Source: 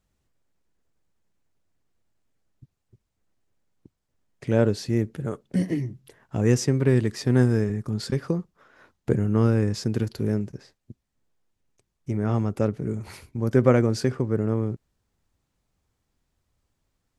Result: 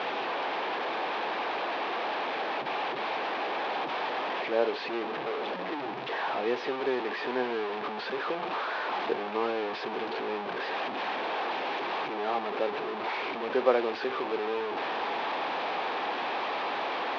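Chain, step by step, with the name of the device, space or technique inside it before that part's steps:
digital answering machine (band-pass filter 340–3,100 Hz; linear delta modulator 32 kbit/s, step −23.5 dBFS; loudspeaker in its box 490–3,100 Hz, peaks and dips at 570 Hz −3 dB, 810 Hz +4 dB, 1,400 Hz −6 dB, 2,000 Hz −6 dB, 2,900 Hz −4 dB)
level +1.5 dB

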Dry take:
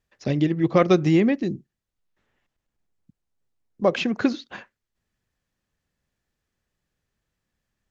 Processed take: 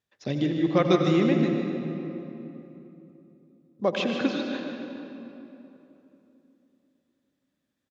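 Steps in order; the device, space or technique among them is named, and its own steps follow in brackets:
PA in a hall (high-pass filter 110 Hz; parametric band 3,600 Hz +7 dB 0.23 octaves; single-tap delay 151 ms −9 dB; convolution reverb RT60 3.2 s, pre-delay 78 ms, DRR 3.5 dB)
level −5 dB

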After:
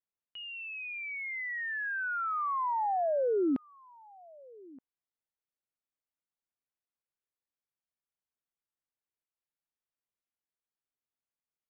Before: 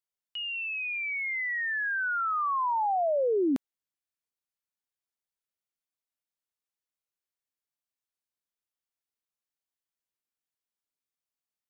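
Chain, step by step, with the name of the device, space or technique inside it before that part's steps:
shout across a valley (high-frequency loss of the air 400 metres; slap from a distant wall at 210 metres, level −23 dB)
level −1.5 dB

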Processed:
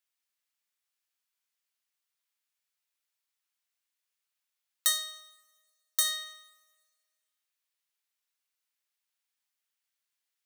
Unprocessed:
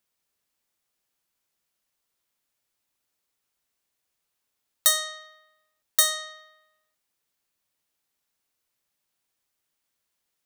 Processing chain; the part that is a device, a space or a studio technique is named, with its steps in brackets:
filter by subtraction (in parallel: low-pass filter 2,100 Hz 12 dB per octave + polarity inversion)
0:04.92–0:06.05: on the sum: parametric band 2,000 Hz −5.5 dB 1.3 octaves
coupled-rooms reverb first 0.41 s, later 1.9 s, from −18 dB, DRR 11.5 dB
level −7 dB

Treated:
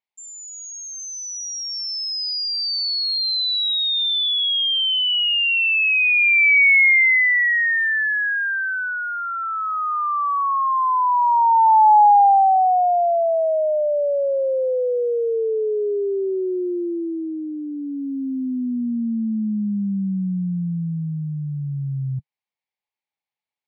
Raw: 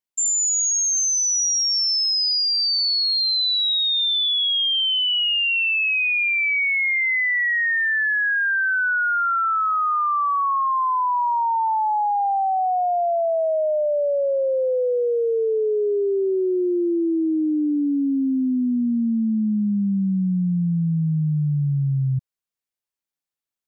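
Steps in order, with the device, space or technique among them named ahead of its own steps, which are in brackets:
guitar cabinet (loudspeaker in its box 97–4,600 Hz, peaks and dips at 150 Hz −5 dB, 300 Hz −8 dB, 840 Hz +10 dB, 1,400 Hz −7 dB, 2,200 Hz +8 dB)

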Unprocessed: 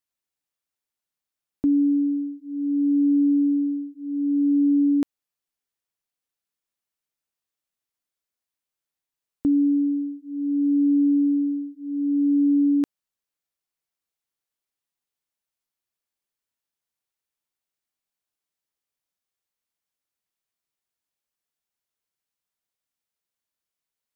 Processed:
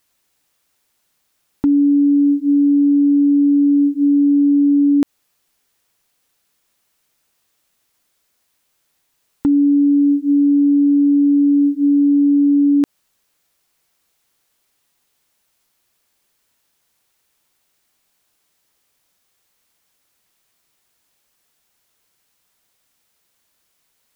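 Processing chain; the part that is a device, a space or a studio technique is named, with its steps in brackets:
loud club master (downward compressor 3 to 1, threshold −23 dBFS, peak gain reduction 4.5 dB; hard clipping −18.5 dBFS, distortion −38 dB; boost into a limiter +29.5 dB)
level −8.5 dB

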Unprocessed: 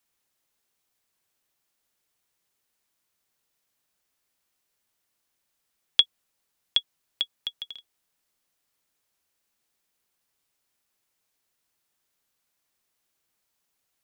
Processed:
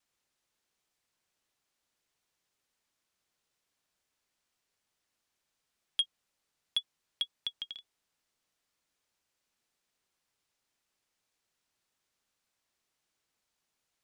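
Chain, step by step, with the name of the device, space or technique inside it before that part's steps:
compact cassette (soft clipping −20 dBFS, distortion −5 dB; low-pass filter 8,100 Hz 12 dB per octave; tape wow and flutter; white noise bed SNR 42 dB)
level −2.5 dB

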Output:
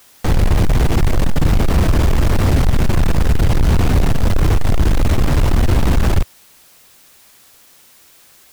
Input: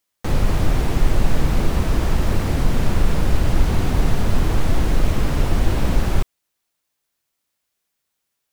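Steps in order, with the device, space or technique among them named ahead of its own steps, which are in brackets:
open-reel tape (soft clipping −18.5 dBFS, distortion −8 dB; parametric band 83 Hz +4 dB 1.19 octaves; white noise bed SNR 35 dB)
level +9 dB

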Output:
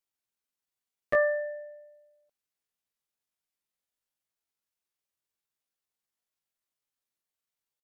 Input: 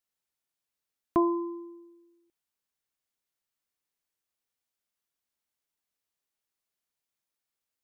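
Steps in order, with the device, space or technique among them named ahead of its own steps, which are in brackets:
chipmunk voice (pitch shifter +9.5 semitones)

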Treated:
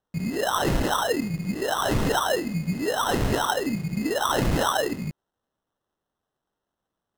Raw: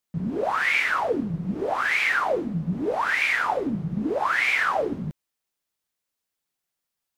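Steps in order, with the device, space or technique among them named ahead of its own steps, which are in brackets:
crushed at another speed (tape speed factor 0.5×; decimation without filtering 38×; tape speed factor 2×)

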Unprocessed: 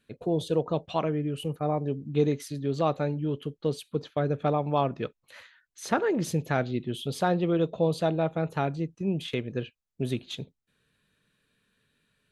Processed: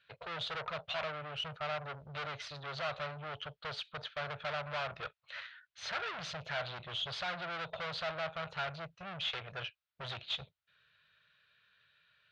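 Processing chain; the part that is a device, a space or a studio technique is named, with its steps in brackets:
scooped metal amplifier (tube saturation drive 39 dB, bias 0.75; loudspeaker in its box 100–4,000 Hz, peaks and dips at 230 Hz −8 dB, 620 Hz +8 dB, 1,400 Hz +7 dB; guitar amp tone stack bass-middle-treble 10-0-10)
level +12 dB

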